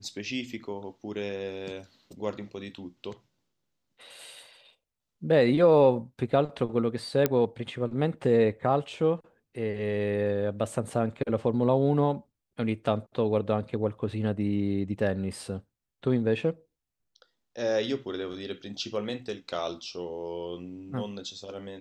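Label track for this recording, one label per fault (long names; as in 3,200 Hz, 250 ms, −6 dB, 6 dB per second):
7.260000	7.260000	click −9 dBFS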